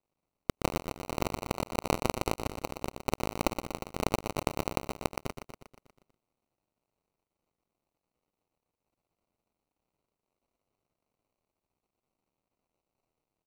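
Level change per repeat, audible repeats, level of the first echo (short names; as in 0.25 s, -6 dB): -4.5 dB, 6, -8.5 dB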